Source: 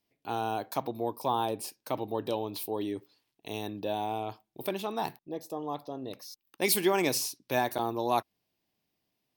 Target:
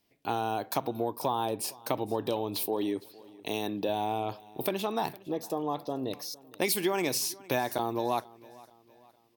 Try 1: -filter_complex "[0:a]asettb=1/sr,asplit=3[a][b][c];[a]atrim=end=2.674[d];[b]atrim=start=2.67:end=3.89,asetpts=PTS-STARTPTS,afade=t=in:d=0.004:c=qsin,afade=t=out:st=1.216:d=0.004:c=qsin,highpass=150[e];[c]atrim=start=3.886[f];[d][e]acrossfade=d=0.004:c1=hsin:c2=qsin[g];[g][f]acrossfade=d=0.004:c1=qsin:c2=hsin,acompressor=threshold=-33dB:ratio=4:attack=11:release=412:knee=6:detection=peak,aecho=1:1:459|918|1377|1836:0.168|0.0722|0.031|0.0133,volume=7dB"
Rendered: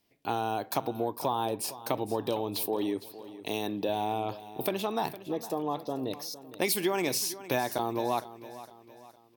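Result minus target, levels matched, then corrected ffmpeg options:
echo-to-direct +6.5 dB
-filter_complex "[0:a]asettb=1/sr,asplit=3[a][b][c];[a]atrim=end=2.674[d];[b]atrim=start=2.67:end=3.89,asetpts=PTS-STARTPTS,afade=t=in:d=0.004:c=qsin,afade=t=out:st=1.216:d=0.004:c=qsin,highpass=150[e];[c]atrim=start=3.886[f];[d][e]acrossfade=d=0.004:c1=hsin:c2=qsin[g];[g][f]acrossfade=d=0.004:c1=qsin:c2=hsin,acompressor=threshold=-33dB:ratio=4:attack=11:release=412:knee=6:detection=peak,aecho=1:1:459|918|1377:0.0794|0.0342|0.0147,volume=7dB"

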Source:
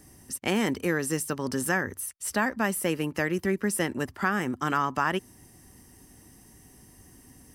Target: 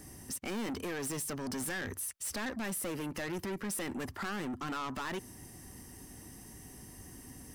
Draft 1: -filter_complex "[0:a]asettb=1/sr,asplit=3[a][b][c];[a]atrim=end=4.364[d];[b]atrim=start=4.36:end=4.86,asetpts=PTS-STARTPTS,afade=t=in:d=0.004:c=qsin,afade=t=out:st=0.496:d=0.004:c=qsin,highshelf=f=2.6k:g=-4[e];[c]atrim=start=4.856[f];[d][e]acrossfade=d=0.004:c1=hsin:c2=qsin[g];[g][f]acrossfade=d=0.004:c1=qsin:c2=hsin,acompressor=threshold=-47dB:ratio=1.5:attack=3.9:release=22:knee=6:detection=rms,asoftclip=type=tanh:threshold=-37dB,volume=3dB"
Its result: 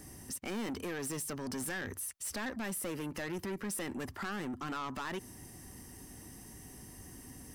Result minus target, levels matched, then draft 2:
compressor: peak gain reduction +3.5 dB
-filter_complex "[0:a]asettb=1/sr,asplit=3[a][b][c];[a]atrim=end=4.364[d];[b]atrim=start=4.36:end=4.86,asetpts=PTS-STARTPTS,afade=t=in:d=0.004:c=qsin,afade=t=out:st=0.496:d=0.004:c=qsin,highshelf=f=2.6k:g=-4[e];[c]atrim=start=4.856[f];[d][e]acrossfade=d=0.004:c1=hsin:c2=qsin[g];[g][f]acrossfade=d=0.004:c1=qsin:c2=hsin,acompressor=threshold=-37dB:ratio=1.5:attack=3.9:release=22:knee=6:detection=rms,asoftclip=type=tanh:threshold=-37dB,volume=3dB"

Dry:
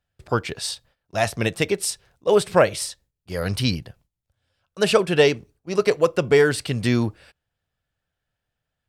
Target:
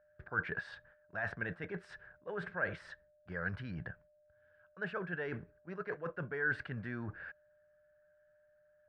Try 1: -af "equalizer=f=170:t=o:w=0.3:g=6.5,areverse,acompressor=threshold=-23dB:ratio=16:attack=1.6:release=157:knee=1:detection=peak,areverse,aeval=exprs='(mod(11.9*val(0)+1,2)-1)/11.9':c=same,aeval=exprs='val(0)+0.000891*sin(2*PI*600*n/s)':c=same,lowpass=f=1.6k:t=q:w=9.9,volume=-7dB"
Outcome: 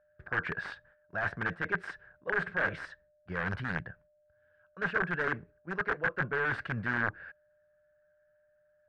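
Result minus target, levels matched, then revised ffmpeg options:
compressor: peak gain reduction -6 dB
-af "equalizer=f=170:t=o:w=0.3:g=6.5,areverse,acompressor=threshold=-29.5dB:ratio=16:attack=1.6:release=157:knee=1:detection=peak,areverse,aeval=exprs='(mod(11.9*val(0)+1,2)-1)/11.9':c=same,aeval=exprs='val(0)+0.000891*sin(2*PI*600*n/s)':c=same,lowpass=f=1.6k:t=q:w=9.9,volume=-7dB"

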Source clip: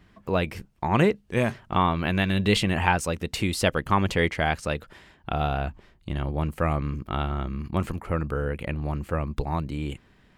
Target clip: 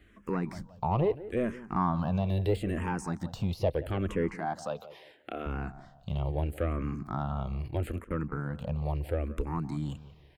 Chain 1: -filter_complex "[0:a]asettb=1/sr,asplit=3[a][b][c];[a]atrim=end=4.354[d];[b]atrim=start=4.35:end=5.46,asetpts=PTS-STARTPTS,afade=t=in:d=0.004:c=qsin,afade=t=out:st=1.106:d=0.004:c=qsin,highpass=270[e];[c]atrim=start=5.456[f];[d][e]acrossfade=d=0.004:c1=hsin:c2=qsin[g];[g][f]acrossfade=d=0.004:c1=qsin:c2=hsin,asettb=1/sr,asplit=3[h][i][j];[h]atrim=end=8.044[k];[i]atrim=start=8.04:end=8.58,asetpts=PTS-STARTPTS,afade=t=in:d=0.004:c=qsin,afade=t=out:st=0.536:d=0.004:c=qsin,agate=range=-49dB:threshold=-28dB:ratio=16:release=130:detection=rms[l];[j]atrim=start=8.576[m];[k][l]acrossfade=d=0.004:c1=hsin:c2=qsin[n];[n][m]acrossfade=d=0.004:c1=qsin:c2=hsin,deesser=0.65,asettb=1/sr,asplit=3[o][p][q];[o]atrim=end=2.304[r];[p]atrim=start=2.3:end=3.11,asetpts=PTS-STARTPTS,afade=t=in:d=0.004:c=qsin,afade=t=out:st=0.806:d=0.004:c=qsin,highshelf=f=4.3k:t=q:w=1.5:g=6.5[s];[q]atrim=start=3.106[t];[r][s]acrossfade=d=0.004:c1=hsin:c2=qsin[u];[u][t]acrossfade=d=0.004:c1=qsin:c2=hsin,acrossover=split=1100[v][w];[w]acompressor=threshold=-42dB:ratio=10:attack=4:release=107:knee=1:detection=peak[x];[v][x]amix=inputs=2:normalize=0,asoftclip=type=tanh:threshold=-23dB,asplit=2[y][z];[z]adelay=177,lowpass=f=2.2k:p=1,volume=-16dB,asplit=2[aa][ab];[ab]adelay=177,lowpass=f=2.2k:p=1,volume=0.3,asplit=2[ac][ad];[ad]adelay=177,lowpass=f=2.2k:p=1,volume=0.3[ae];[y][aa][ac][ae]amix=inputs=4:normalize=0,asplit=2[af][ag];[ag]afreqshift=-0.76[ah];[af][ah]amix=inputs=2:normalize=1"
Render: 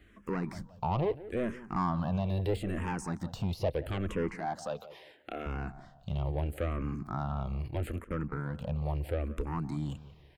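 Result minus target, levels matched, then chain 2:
soft clip: distortion +6 dB
-filter_complex "[0:a]asettb=1/sr,asplit=3[a][b][c];[a]atrim=end=4.354[d];[b]atrim=start=4.35:end=5.46,asetpts=PTS-STARTPTS,afade=t=in:d=0.004:c=qsin,afade=t=out:st=1.106:d=0.004:c=qsin,highpass=270[e];[c]atrim=start=5.456[f];[d][e]acrossfade=d=0.004:c1=hsin:c2=qsin[g];[g][f]acrossfade=d=0.004:c1=qsin:c2=hsin,asettb=1/sr,asplit=3[h][i][j];[h]atrim=end=8.044[k];[i]atrim=start=8.04:end=8.58,asetpts=PTS-STARTPTS,afade=t=in:d=0.004:c=qsin,afade=t=out:st=0.536:d=0.004:c=qsin,agate=range=-49dB:threshold=-28dB:ratio=16:release=130:detection=rms[l];[j]atrim=start=8.576[m];[k][l]acrossfade=d=0.004:c1=hsin:c2=qsin[n];[n][m]acrossfade=d=0.004:c1=qsin:c2=hsin,deesser=0.65,asettb=1/sr,asplit=3[o][p][q];[o]atrim=end=2.304[r];[p]atrim=start=2.3:end=3.11,asetpts=PTS-STARTPTS,afade=t=in:d=0.004:c=qsin,afade=t=out:st=0.806:d=0.004:c=qsin,highshelf=f=4.3k:t=q:w=1.5:g=6.5[s];[q]atrim=start=3.106[t];[r][s]acrossfade=d=0.004:c1=hsin:c2=qsin[u];[u][t]acrossfade=d=0.004:c1=qsin:c2=hsin,acrossover=split=1100[v][w];[w]acompressor=threshold=-42dB:ratio=10:attack=4:release=107:knee=1:detection=peak[x];[v][x]amix=inputs=2:normalize=0,asoftclip=type=tanh:threshold=-17dB,asplit=2[y][z];[z]adelay=177,lowpass=f=2.2k:p=1,volume=-16dB,asplit=2[aa][ab];[ab]adelay=177,lowpass=f=2.2k:p=1,volume=0.3,asplit=2[ac][ad];[ad]adelay=177,lowpass=f=2.2k:p=1,volume=0.3[ae];[y][aa][ac][ae]amix=inputs=4:normalize=0,asplit=2[af][ag];[ag]afreqshift=-0.76[ah];[af][ah]amix=inputs=2:normalize=1"

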